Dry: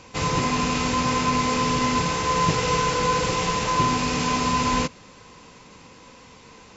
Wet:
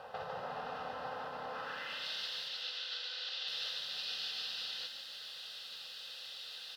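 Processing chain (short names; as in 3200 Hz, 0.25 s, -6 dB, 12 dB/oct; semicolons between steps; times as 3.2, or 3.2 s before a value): compressor, threshold -35 dBFS, peak gain reduction 17.5 dB; limiter -29.5 dBFS, peak gain reduction 5.5 dB; fixed phaser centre 1500 Hz, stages 8; added noise violet -58 dBFS; band-pass sweep 880 Hz -> 3800 Hz, 1.49–2.07; 2.48–3.48 BPF 540–5200 Hz; on a send: frequency-shifting echo 0.15 s, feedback 59%, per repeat +33 Hz, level -5.5 dB; on the sum: gain +11.5 dB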